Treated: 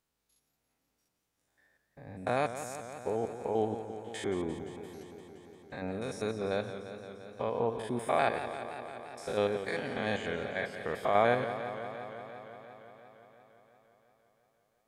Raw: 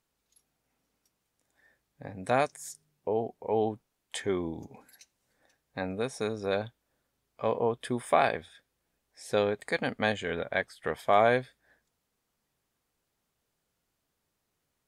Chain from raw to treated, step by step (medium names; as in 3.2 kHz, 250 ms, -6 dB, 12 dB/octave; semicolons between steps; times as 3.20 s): spectrogram pixelated in time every 100 ms; modulated delay 173 ms, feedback 78%, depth 87 cents, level -11 dB; trim -1.5 dB